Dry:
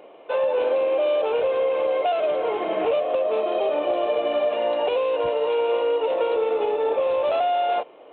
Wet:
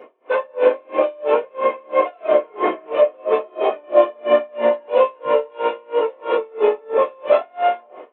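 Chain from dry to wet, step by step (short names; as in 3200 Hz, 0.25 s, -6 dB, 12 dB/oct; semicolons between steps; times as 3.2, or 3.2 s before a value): reverb RT60 0.40 s, pre-delay 3 ms, DRR -9 dB; dB-linear tremolo 3 Hz, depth 33 dB; gain -6.5 dB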